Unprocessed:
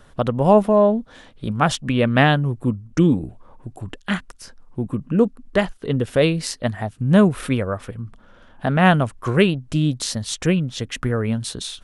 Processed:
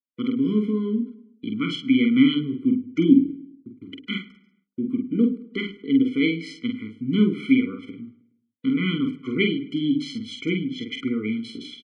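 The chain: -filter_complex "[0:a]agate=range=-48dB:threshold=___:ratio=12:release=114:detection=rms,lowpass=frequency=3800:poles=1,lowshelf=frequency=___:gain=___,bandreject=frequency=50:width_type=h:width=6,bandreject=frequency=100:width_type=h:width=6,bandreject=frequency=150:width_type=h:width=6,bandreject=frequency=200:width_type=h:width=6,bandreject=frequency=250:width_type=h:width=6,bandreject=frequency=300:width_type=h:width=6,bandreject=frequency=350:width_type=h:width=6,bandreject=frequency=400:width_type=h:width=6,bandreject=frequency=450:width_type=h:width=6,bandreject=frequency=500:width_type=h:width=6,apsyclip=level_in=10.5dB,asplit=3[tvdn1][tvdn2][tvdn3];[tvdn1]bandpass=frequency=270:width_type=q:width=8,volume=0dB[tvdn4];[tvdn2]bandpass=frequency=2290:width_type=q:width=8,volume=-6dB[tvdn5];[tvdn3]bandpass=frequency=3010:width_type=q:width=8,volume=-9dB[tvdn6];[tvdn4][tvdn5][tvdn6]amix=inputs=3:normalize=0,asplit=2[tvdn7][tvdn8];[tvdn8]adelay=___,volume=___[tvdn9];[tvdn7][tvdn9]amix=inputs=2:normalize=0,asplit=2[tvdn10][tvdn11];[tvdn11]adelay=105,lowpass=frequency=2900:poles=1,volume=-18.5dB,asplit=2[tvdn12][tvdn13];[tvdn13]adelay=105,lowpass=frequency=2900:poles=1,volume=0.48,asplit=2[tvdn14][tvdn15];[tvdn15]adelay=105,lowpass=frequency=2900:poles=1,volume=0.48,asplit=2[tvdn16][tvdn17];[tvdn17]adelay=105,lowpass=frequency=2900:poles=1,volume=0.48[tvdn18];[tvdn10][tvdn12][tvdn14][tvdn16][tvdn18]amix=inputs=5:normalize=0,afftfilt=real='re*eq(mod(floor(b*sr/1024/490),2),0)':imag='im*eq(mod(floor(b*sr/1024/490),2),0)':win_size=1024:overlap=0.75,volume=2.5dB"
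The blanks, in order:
-34dB, 250, -9.5, 47, -5dB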